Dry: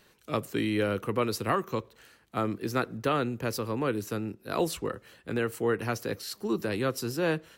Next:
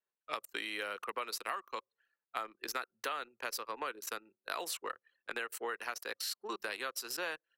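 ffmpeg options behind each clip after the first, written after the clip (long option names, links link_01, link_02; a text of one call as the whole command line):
ffmpeg -i in.wav -af "highpass=940,anlmdn=0.1,acompressor=threshold=-41dB:ratio=6,volume=5.5dB" out.wav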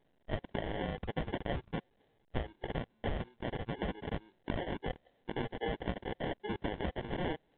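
ffmpeg -i in.wav -af "acrusher=samples=35:mix=1:aa=0.000001,volume=3dB" -ar 8000 -c:a pcm_alaw out.wav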